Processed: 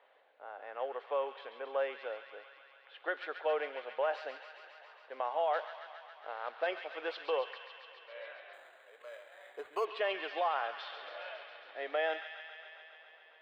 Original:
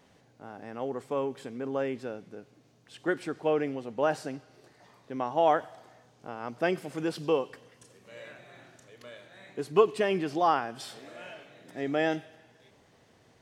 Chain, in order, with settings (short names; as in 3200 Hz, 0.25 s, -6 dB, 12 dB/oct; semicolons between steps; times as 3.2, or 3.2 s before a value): 5.53–6.67 CVSD 32 kbps; low-pass opened by the level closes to 2600 Hz, open at -23 dBFS; elliptic band-pass 530–3700 Hz, stop band 60 dB; limiter -23.5 dBFS, peak gain reduction 10 dB; thin delay 0.137 s, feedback 79%, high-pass 1600 Hz, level -7 dB; 8.53–9.85 decimation joined by straight lines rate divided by 8×